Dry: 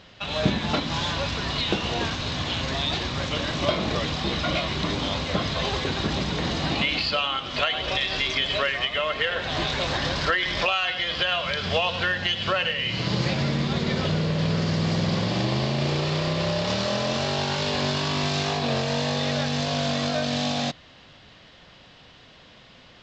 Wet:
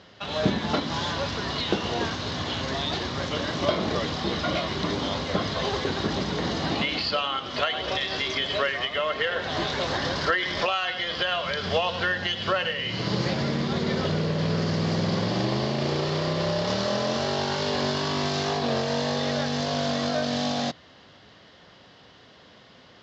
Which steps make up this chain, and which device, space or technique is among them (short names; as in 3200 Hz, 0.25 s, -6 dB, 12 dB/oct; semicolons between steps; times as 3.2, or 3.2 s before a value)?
car door speaker with a rattle (rattling part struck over -22 dBFS, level -28 dBFS; speaker cabinet 87–6800 Hz, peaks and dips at 140 Hz -4 dB, 410 Hz +3 dB, 2500 Hz -7 dB, 3700 Hz -3 dB)